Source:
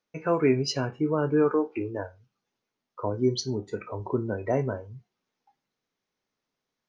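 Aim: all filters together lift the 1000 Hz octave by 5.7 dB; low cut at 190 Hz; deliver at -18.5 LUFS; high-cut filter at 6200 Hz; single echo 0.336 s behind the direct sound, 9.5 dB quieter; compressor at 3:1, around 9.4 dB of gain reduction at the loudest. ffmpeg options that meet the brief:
-af "highpass=190,lowpass=6.2k,equalizer=f=1k:t=o:g=7,acompressor=threshold=-30dB:ratio=3,aecho=1:1:336:0.335,volume=15.5dB"

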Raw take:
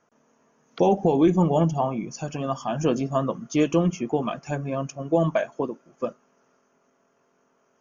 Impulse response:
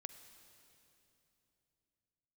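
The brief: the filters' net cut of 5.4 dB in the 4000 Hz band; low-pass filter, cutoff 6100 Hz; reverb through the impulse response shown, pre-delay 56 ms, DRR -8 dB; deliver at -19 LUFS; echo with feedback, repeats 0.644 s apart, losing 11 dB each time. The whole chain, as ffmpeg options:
-filter_complex "[0:a]lowpass=6.1k,equalizer=f=4k:t=o:g=-7.5,aecho=1:1:644|1288|1932:0.282|0.0789|0.0221,asplit=2[a][b];[1:a]atrim=start_sample=2205,adelay=56[c];[b][c]afir=irnorm=-1:irlink=0,volume=13dB[d];[a][d]amix=inputs=2:normalize=0,volume=-3.5dB"

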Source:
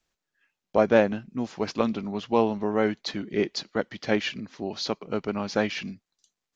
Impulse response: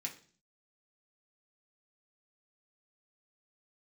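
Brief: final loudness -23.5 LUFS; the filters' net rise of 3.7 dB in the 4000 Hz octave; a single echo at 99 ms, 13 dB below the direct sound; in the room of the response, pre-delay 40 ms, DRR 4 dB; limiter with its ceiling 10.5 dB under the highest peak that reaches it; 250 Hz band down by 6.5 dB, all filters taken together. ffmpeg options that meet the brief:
-filter_complex "[0:a]equalizer=f=250:t=o:g=-8.5,equalizer=f=4k:t=o:g=4.5,alimiter=limit=-16dB:level=0:latency=1,aecho=1:1:99:0.224,asplit=2[a][b];[1:a]atrim=start_sample=2205,adelay=40[c];[b][c]afir=irnorm=-1:irlink=0,volume=-3dB[d];[a][d]amix=inputs=2:normalize=0,volume=6.5dB"

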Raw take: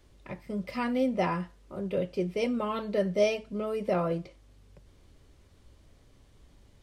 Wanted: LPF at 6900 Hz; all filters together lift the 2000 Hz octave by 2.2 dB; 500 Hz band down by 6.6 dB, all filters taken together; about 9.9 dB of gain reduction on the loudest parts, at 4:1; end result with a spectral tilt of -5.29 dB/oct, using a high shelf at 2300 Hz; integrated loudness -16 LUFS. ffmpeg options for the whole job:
-af "lowpass=6.9k,equalizer=f=500:t=o:g=-8.5,equalizer=f=2k:t=o:g=5,highshelf=f=2.3k:g=-3.5,acompressor=threshold=-38dB:ratio=4,volume=25dB"

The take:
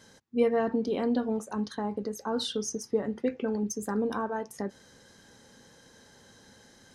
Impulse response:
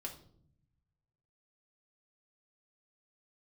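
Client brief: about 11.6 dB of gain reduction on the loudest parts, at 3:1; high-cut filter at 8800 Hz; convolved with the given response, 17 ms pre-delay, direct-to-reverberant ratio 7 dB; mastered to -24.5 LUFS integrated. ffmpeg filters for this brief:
-filter_complex "[0:a]lowpass=8.8k,acompressor=threshold=-36dB:ratio=3,asplit=2[a][b];[1:a]atrim=start_sample=2205,adelay=17[c];[b][c]afir=irnorm=-1:irlink=0,volume=-5dB[d];[a][d]amix=inputs=2:normalize=0,volume=13dB"

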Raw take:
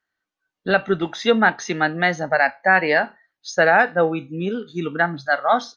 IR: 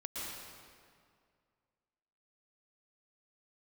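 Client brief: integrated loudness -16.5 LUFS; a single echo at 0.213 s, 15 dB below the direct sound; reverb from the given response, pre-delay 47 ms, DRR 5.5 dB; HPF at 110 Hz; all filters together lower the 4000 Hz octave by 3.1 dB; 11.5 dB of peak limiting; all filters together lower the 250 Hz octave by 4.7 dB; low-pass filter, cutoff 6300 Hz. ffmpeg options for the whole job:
-filter_complex "[0:a]highpass=110,lowpass=6.3k,equalizer=f=250:t=o:g=-6.5,equalizer=f=4k:t=o:g=-3.5,alimiter=limit=-15.5dB:level=0:latency=1,aecho=1:1:213:0.178,asplit=2[a][b];[1:a]atrim=start_sample=2205,adelay=47[c];[b][c]afir=irnorm=-1:irlink=0,volume=-7dB[d];[a][d]amix=inputs=2:normalize=0,volume=10dB"

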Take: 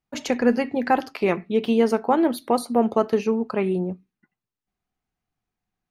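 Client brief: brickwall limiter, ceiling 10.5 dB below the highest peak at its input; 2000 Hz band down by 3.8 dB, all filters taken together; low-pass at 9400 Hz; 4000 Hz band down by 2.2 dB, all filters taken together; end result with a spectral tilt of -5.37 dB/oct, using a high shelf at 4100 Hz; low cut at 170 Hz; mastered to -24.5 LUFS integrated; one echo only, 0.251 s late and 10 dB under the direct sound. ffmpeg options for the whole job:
-af "highpass=170,lowpass=9.4k,equalizer=f=2k:t=o:g=-5,equalizer=f=4k:t=o:g=-3,highshelf=f=4.1k:g=3.5,alimiter=limit=-17.5dB:level=0:latency=1,aecho=1:1:251:0.316,volume=3dB"

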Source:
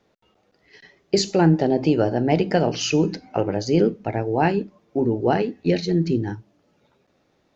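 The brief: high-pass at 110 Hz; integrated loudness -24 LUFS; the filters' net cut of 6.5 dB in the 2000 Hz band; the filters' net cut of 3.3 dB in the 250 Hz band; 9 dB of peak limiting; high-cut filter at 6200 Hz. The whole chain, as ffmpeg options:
-af "highpass=110,lowpass=6.2k,equalizer=f=250:t=o:g=-4.5,equalizer=f=2k:t=o:g=-9,volume=3dB,alimiter=limit=-12.5dB:level=0:latency=1"

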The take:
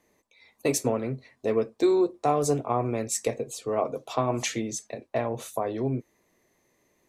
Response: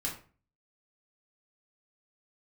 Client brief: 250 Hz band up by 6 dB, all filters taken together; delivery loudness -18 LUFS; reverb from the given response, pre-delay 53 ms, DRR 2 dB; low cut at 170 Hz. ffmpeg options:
-filter_complex "[0:a]highpass=170,equalizer=f=250:t=o:g=9,asplit=2[a][b];[1:a]atrim=start_sample=2205,adelay=53[c];[b][c]afir=irnorm=-1:irlink=0,volume=-4.5dB[d];[a][d]amix=inputs=2:normalize=0,volume=4.5dB"

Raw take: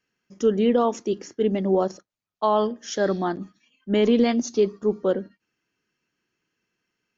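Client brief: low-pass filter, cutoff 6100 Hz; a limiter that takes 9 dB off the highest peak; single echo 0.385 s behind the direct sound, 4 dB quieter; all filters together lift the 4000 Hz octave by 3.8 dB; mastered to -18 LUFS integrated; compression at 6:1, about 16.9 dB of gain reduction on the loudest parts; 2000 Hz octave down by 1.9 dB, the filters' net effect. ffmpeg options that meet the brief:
-af "lowpass=6.1k,equalizer=f=2k:t=o:g=-4.5,equalizer=f=4k:t=o:g=8,acompressor=threshold=-34dB:ratio=6,alimiter=level_in=6.5dB:limit=-24dB:level=0:latency=1,volume=-6.5dB,aecho=1:1:385:0.631,volume=22dB"

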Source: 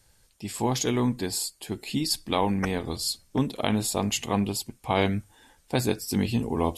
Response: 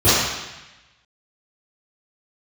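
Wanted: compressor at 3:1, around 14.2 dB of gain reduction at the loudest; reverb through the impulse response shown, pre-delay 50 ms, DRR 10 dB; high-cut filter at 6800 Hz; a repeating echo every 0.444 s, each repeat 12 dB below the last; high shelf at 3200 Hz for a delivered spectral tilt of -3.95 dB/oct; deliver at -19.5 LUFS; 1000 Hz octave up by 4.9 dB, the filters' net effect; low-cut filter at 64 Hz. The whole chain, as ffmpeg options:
-filter_complex "[0:a]highpass=64,lowpass=6.8k,equalizer=f=1k:t=o:g=5.5,highshelf=f=3.2k:g=6.5,acompressor=threshold=-37dB:ratio=3,aecho=1:1:444|888|1332:0.251|0.0628|0.0157,asplit=2[a][b];[1:a]atrim=start_sample=2205,adelay=50[c];[b][c]afir=irnorm=-1:irlink=0,volume=-34.5dB[d];[a][d]amix=inputs=2:normalize=0,volume=17dB"

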